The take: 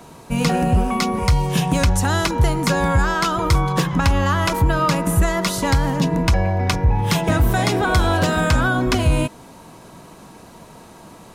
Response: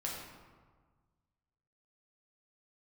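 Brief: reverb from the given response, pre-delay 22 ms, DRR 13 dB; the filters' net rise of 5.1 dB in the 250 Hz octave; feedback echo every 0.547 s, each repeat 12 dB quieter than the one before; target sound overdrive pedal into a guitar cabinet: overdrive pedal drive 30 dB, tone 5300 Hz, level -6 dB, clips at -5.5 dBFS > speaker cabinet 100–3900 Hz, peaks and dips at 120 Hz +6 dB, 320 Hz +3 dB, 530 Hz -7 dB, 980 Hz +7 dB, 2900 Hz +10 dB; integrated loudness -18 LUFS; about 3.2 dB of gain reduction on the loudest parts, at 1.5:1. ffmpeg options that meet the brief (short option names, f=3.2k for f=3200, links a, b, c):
-filter_complex "[0:a]equalizer=f=250:t=o:g=6,acompressor=threshold=-19dB:ratio=1.5,aecho=1:1:547|1094|1641:0.251|0.0628|0.0157,asplit=2[a][b];[1:a]atrim=start_sample=2205,adelay=22[c];[b][c]afir=irnorm=-1:irlink=0,volume=-15dB[d];[a][d]amix=inputs=2:normalize=0,asplit=2[e][f];[f]highpass=f=720:p=1,volume=30dB,asoftclip=type=tanh:threshold=-5.5dB[g];[e][g]amix=inputs=2:normalize=0,lowpass=f=5.3k:p=1,volume=-6dB,highpass=100,equalizer=f=120:t=q:w=4:g=6,equalizer=f=320:t=q:w=4:g=3,equalizer=f=530:t=q:w=4:g=-7,equalizer=f=980:t=q:w=4:g=7,equalizer=f=2.9k:t=q:w=4:g=10,lowpass=f=3.9k:w=0.5412,lowpass=f=3.9k:w=1.3066,volume=-7.5dB"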